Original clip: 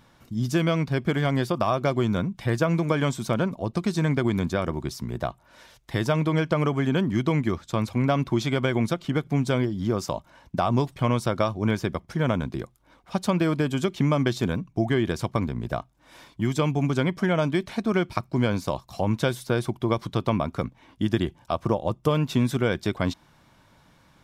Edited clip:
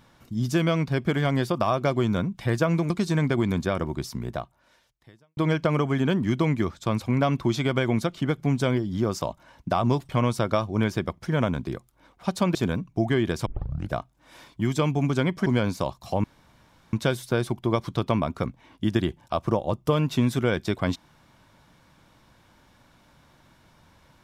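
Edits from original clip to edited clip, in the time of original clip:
0:02.90–0:03.77: remove
0:05.06–0:06.24: fade out quadratic
0:13.42–0:14.35: remove
0:15.26: tape start 0.46 s
0:17.26–0:18.33: remove
0:19.11: splice in room tone 0.69 s

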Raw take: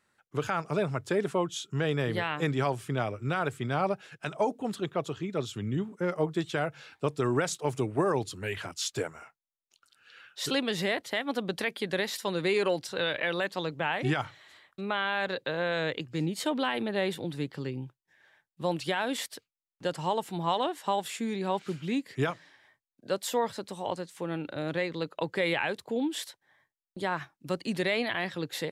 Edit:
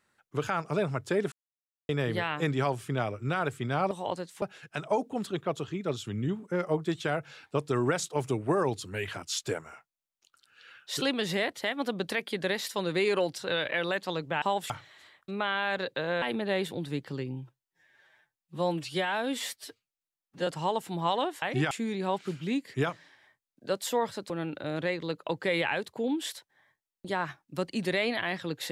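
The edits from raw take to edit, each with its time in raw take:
0:01.32–0:01.89: silence
0:13.91–0:14.20: swap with 0:20.84–0:21.12
0:15.72–0:16.69: remove
0:17.79–0:19.89: time-stretch 1.5×
0:23.71–0:24.22: move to 0:03.91

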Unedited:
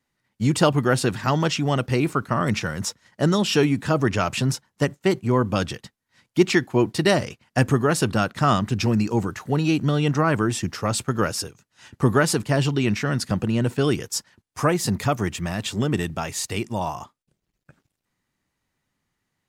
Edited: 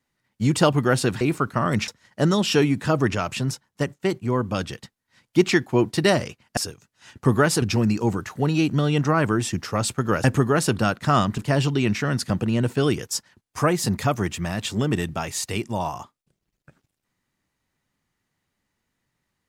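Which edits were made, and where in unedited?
0:01.21–0:01.96: remove
0:02.63–0:02.89: remove
0:04.16–0:05.73: clip gain −3 dB
0:07.58–0:08.72: swap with 0:11.34–0:12.39

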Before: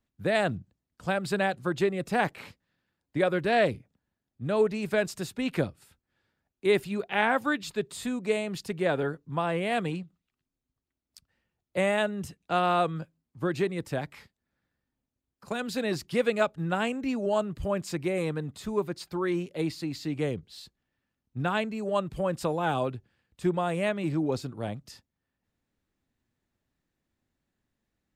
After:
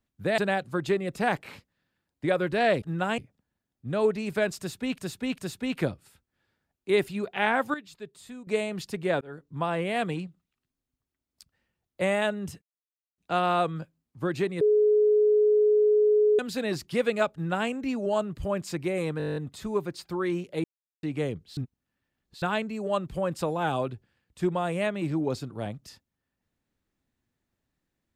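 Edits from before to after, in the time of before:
0:00.38–0:01.30: remove
0:05.14–0:05.54: repeat, 3 plays
0:07.50–0:08.23: clip gain −11 dB
0:08.97–0:09.32: fade in linear
0:12.38: splice in silence 0.56 s
0:13.81–0:15.59: beep over 422 Hz −17.5 dBFS
0:16.53–0:16.89: duplicate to 0:03.74
0:18.38: stutter 0.02 s, 10 plays
0:19.66–0:20.05: silence
0:20.59–0:21.44: reverse

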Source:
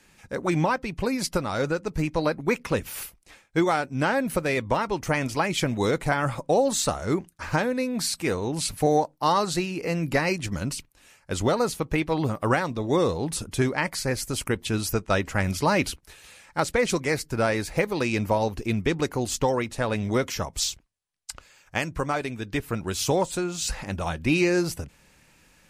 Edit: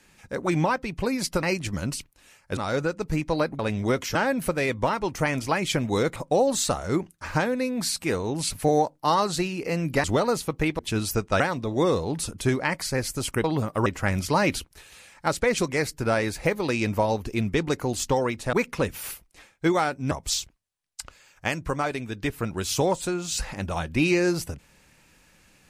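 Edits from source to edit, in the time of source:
0:02.45–0:04.03: swap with 0:19.85–0:20.41
0:06.04–0:06.34: remove
0:10.22–0:11.36: move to 0:01.43
0:12.11–0:12.53: swap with 0:14.57–0:15.18

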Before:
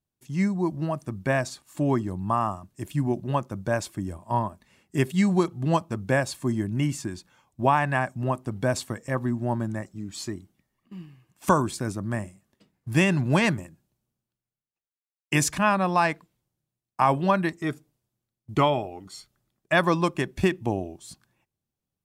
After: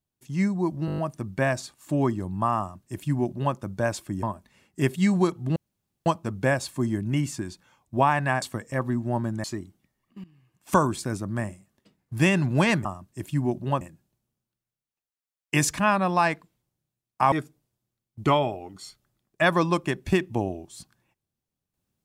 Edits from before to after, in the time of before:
0:00.86: stutter 0.02 s, 7 plays
0:02.47–0:03.43: duplicate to 0:13.60
0:04.11–0:04.39: remove
0:05.72: splice in room tone 0.50 s
0:08.08–0:08.78: remove
0:09.80–0:10.19: remove
0:10.99–0:11.49: fade in, from −17 dB
0:17.11–0:17.63: remove

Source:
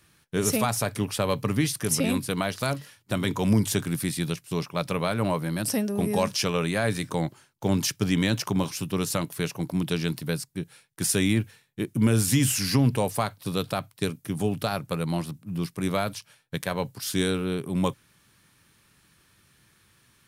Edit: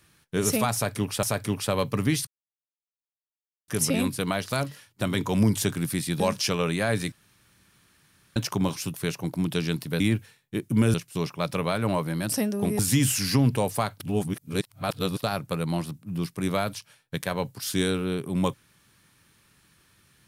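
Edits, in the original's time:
0:00.74–0:01.23: repeat, 2 plays
0:01.78: splice in silence 1.41 s
0:04.30–0:06.15: move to 0:12.19
0:07.07–0:08.31: fill with room tone
0:08.89–0:09.30: remove
0:10.36–0:11.25: remove
0:13.40–0:14.63: reverse

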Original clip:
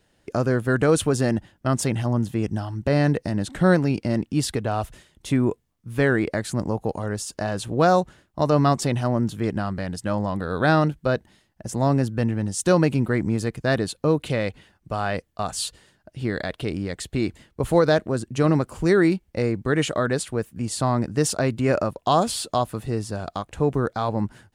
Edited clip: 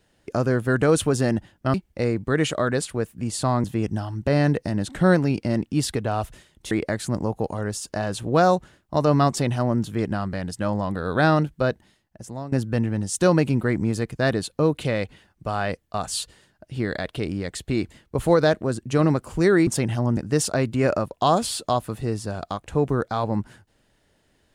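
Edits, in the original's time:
0:01.74–0:02.24: swap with 0:19.12–0:21.02
0:05.31–0:06.16: remove
0:11.12–0:11.97: fade out, to −18.5 dB

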